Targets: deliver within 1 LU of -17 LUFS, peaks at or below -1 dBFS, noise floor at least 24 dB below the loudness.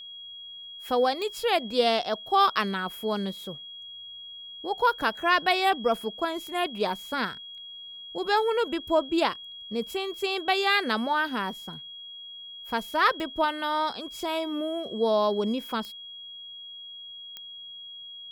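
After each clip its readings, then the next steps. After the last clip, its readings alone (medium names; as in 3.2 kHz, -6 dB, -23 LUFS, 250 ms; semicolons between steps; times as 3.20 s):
clicks found 5; steady tone 3.3 kHz; tone level -40 dBFS; loudness -27.0 LUFS; peak level -9.5 dBFS; loudness target -17.0 LUFS
-> de-click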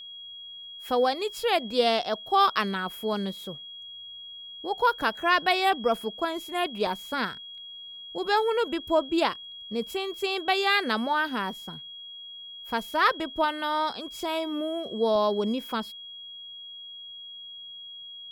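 clicks found 0; steady tone 3.3 kHz; tone level -40 dBFS
-> band-stop 3.3 kHz, Q 30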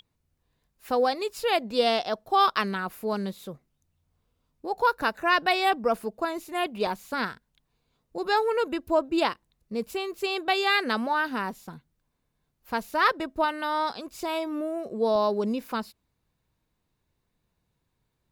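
steady tone not found; loudness -27.0 LUFS; peak level -9.5 dBFS; loudness target -17.0 LUFS
-> trim +10 dB; peak limiter -1 dBFS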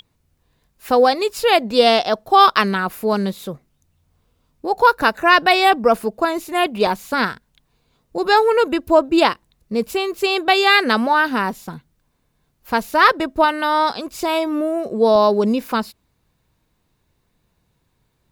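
loudness -17.0 LUFS; peak level -1.0 dBFS; noise floor -67 dBFS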